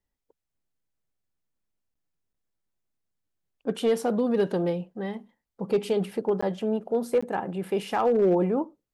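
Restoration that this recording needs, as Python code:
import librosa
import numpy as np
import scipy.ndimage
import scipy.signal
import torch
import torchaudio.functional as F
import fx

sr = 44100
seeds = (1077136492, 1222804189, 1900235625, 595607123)

y = fx.fix_declip(x, sr, threshold_db=-16.0)
y = fx.fix_interpolate(y, sr, at_s=(1.94, 2.33, 6.41, 7.21), length_ms=15.0)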